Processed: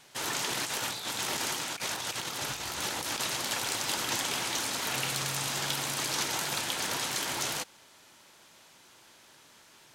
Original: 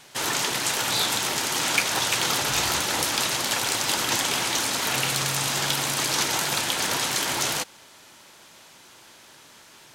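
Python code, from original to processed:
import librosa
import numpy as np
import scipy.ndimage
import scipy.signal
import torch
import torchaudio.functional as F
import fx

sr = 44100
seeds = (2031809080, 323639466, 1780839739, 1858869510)

y = fx.over_compress(x, sr, threshold_db=-27.0, ratio=-0.5, at=(0.49, 3.2))
y = F.gain(torch.from_numpy(y), -7.0).numpy()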